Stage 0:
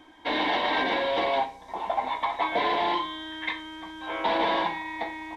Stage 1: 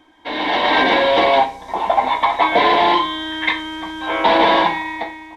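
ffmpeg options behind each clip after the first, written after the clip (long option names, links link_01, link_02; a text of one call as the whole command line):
ffmpeg -i in.wav -af "dynaudnorm=framelen=120:gausssize=9:maxgain=13dB" out.wav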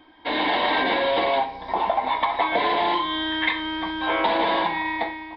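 ffmpeg -i in.wav -af "aresample=11025,aresample=44100,acompressor=threshold=-19dB:ratio=6" out.wav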